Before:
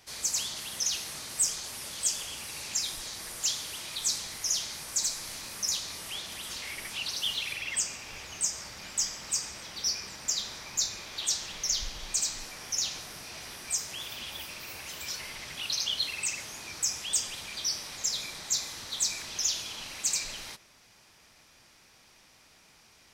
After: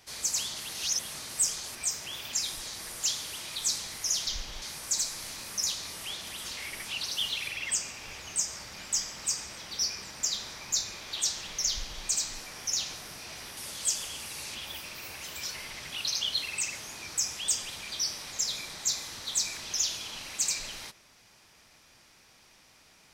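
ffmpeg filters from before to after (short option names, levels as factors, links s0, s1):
-filter_complex "[0:a]asplit=9[s0][s1][s2][s3][s4][s5][s6][s7][s8];[s0]atrim=end=0.692[s9];[s1]atrim=start=0.688:end=1.102,asetpts=PTS-STARTPTS,areverse[s10];[s2]atrim=start=1.098:end=1.752[s11];[s3]atrim=start=13.618:end=14.202[s12];[s4]atrim=start=2.728:end=4.672[s13];[s5]atrim=start=11.738:end=12.092[s14];[s6]atrim=start=4.668:end=13.622[s15];[s7]atrim=start=1.748:end=2.732[s16];[s8]atrim=start=14.198[s17];[s9][s10]acrossfade=d=0.004:c1=hsin:c2=hsin[s18];[s18][s11]acrossfade=d=0.004:c1=hsin:c2=hsin[s19];[s19][s12]acrossfade=d=0.004:c1=hsin:c2=hsin[s20];[s20][s13]acrossfade=d=0.004:c1=hsin:c2=hsin[s21];[s21][s14]acrossfade=d=0.004:c1=hsin:c2=hsin[s22];[s22][s15]acrossfade=d=0.004:c1=hsin:c2=hsin[s23];[s23][s16]acrossfade=d=0.004:c1=hsin:c2=hsin[s24];[s24][s17]acrossfade=d=0.004:c1=hsin:c2=hsin"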